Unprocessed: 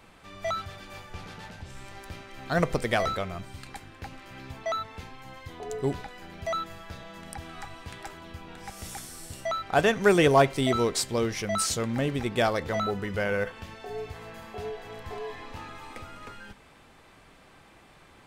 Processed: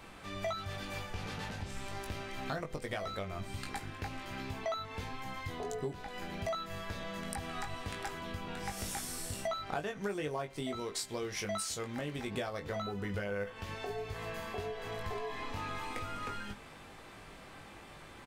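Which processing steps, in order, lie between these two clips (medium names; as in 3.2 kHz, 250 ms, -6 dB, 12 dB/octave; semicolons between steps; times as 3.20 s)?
10.80–12.31 s: bass shelf 440 Hz -6 dB; compression 16:1, threshold -37 dBFS, peak gain reduction 23.5 dB; doubling 20 ms -5.5 dB; trim +2 dB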